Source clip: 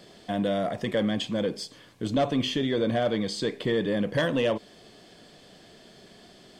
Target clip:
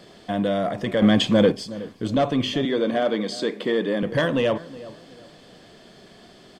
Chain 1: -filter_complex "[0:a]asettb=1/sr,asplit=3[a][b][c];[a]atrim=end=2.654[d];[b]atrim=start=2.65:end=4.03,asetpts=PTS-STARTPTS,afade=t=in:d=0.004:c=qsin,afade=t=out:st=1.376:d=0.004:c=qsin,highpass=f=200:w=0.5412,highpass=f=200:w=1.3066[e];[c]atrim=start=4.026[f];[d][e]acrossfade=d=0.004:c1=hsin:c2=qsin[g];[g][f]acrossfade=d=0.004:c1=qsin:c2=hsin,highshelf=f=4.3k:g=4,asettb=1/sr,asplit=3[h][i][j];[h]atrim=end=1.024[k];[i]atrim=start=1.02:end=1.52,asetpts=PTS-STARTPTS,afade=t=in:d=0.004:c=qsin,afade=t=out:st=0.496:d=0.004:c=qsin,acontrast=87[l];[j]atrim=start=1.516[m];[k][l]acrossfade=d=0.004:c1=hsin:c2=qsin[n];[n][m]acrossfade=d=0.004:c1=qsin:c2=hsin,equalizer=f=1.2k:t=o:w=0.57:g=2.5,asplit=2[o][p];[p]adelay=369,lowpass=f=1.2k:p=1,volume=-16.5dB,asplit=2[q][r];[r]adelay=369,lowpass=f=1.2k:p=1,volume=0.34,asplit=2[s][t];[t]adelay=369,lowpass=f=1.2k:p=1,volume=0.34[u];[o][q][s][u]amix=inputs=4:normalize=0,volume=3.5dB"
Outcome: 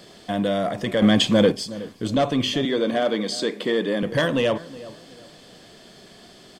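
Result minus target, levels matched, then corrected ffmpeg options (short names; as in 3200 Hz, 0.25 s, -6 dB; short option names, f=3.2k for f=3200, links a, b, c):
8000 Hz band +5.5 dB
-filter_complex "[0:a]asettb=1/sr,asplit=3[a][b][c];[a]atrim=end=2.654[d];[b]atrim=start=2.65:end=4.03,asetpts=PTS-STARTPTS,afade=t=in:d=0.004:c=qsin,afade=t=out:st=1.376:d=0.004:c=qsin,highpass=f=200:w=0.5412,highpass=f=200:w=1.3066[e];[c]atrim=start=4.026[f];[d][e]acrossfade=d=0.004:c1=hsin:c2=qsin[g];[g][f]acrossfade=d=0.004:c1=qsin:c2=hsin,highshelf=f=4.3k:g=-4,asettb=1/sr,asplit=3[h][i][j];[h]atrim=end=1.024[k];[i]atrim=start=1.02:end=1.52,asetpts=PTS-STARTPTS,afade=t=in:d=0.004:c=qsin,afade=t=out:st=0.496:d=0.004:c=qsin,acontrast=87[l];[j]atrim=start=1.516[m];[k][l]acrossfade=d=0.004:c1=hsin:c2=qsin[n];[n][m]acrossfade=d=0.004:c1=qsin:c2=hsin,equalizer=f=1.2k:t=o:w=0.57:g=2.5,asplit=2[o][p];[p]adelay=369,lowpass=f=1.2k:p=1,volume=-16.5dB,asplit=2[q][r];[r]adelay=369,lowpass=f=1.2k:p=1,volume=0.34,asplit=2[s][t];[t]adelay=369,lowpass=f=1.2k:p=1,volume=0.34[u];[o][q][s][u]amix=inputs=4:normalize=0,volume=3.5dB"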